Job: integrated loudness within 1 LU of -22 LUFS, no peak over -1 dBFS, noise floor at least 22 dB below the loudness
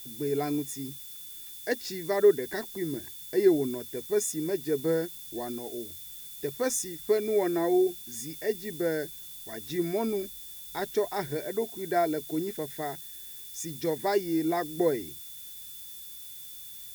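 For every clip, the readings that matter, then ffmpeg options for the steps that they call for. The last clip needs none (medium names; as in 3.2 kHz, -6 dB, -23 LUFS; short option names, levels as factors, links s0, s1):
steady tone 3.5 kHz; tone level -51 dBFS; noise floor -44 dBFS; noise floor target -53 dBFS; loudness -30.5 LUFS; peak level -10.5 dBFS; loudness target -22.0 LUFS
-> -af "bandreject=f=3500:w=30"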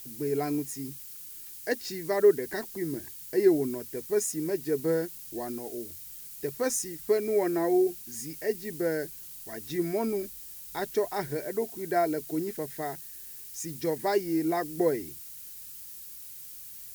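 steady tone not found; noise floor -44 dBFS; noise floor target -52 dBFS
-> -af "afftdn=nr=8:nf=-44"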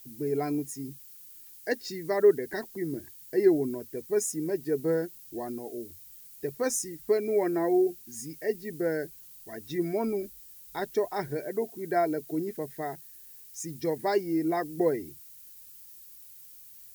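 noise floor -50 dBFS; noise floor target -52 dBFS
-> -af "afftdn=nr=6:nf=-50"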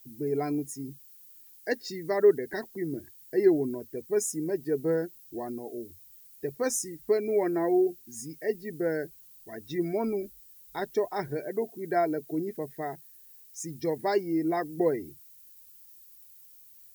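noise floor -54 dBFS; loudness -30.0 LUFS; peak level -11.0 dBFS; loudness target -22.0 LUFS
-> -af "volume=2.51"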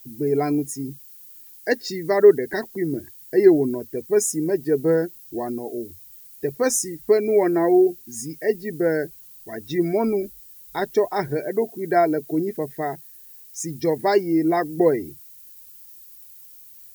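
loudness -22.0 LUFS; peak level -3.0 dBFS; noise floor -46 dBFS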